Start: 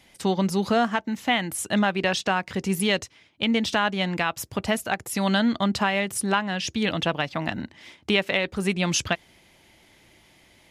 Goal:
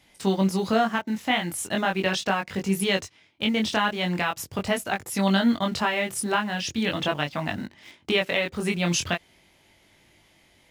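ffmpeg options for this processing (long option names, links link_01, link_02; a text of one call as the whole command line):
ffmpeg -i in.wav -filter_complex "[0:a]flanger=delay=20:depth=3.5:speed=0.4,asplit=2[link_01][link_02];[link_02]acrusher=bits=6:mix=0:aa=0.000001,volume=-11dB[link_03];[link_01][link_03]amix=inputs=2:normalize=0" out.wav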